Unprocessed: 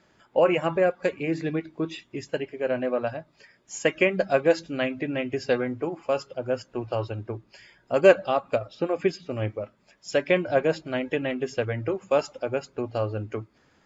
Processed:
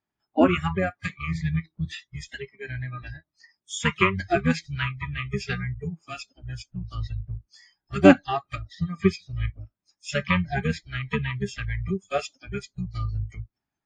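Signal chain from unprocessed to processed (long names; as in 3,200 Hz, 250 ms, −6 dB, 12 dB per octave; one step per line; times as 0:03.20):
pitch-shifted copies added −12 semitones −1 dB, +4 semitones −15 dB
parametric band 500 Hz −11.5 dB 0.27 octaves
noise reduction from a noise print of the clip's start 28 dB
level +1.5 dB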